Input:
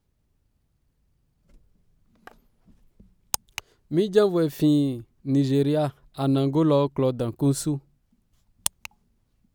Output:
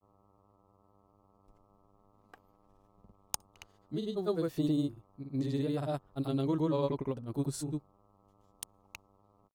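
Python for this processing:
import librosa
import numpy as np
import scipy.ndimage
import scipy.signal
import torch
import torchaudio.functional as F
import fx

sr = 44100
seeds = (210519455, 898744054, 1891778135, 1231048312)

y = fx.dmg_buzz(x, sr, base_hz=100.0, harmonics=13, level_db=-57.0, tilt_db=-2, odd_only=False)
y = fx.granulator(y, sr, seeds[0], grain_ms=100.0, per_s=20.0, spray_ms=100.0, spread_st=0)
y = y * librosa.db_to_amplitude(-9.0)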